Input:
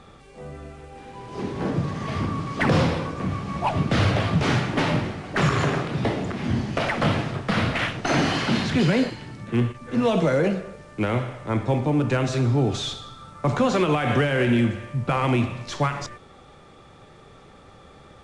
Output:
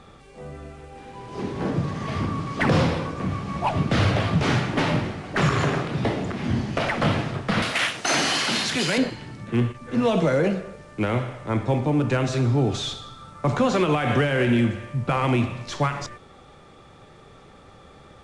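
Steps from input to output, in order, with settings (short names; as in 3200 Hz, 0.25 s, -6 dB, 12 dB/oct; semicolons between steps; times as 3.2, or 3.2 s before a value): 7.62–8.98 RIAA curve recording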